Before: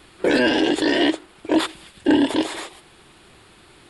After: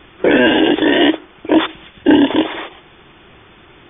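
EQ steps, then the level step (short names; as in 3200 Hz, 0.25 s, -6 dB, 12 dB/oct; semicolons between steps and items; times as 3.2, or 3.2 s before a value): brick-wall FIR low-pass 3600 Hz; +6.5 dB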